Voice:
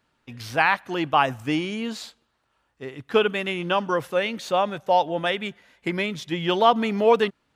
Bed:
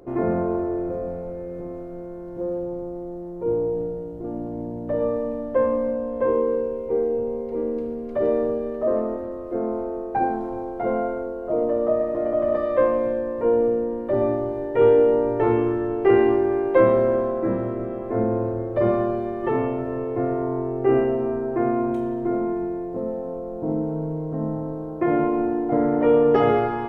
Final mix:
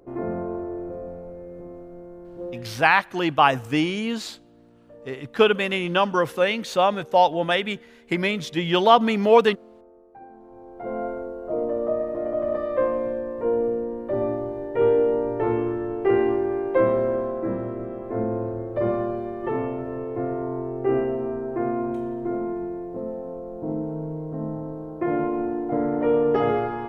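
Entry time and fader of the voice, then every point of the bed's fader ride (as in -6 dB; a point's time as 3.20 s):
2.25 s, +2.5 dB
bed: 2.48 s -6 dB
2.94 s -23 dB
10.26 s -23 dB
11.05 s -3.5 dB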